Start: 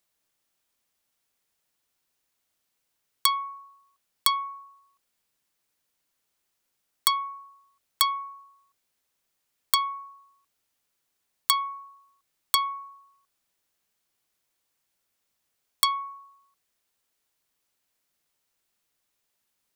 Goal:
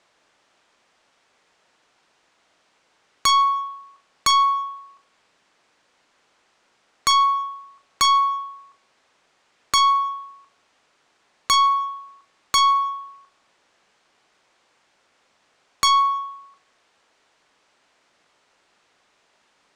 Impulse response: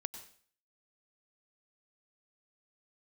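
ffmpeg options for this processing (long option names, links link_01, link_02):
-filter_complex "[0:a]lowpass=frequency=8200:width=0.5412,lowpass=frequency=8200:width=1.3066,asplit=2[link_01][link_02];[link_02]highpass=frequency=720:poles=1,volume=19dB,asoftclip=type=tanh:threshold=-7.5dB[link_03];[link_01][link_03]amix=inputs=2:normalize=0,lowpass=frequency=1000:poles=1,volume=-6dB,aeval=exprs='0.224*sin(PI/2*2.51*val(0)/0.224)':channel_layout=same,acontrast=51,asplit=2[link_04][link_05];[1:a]atrim=start_sample=2205,lowpass=7700,adelay=41[link_06];[link_05][link_06]afir=irnorm=-1:irlink=0,volume=-12dB[link_07];[link_04][link_07]amix=inputs=2:normalize=0,volume=-4.5dB"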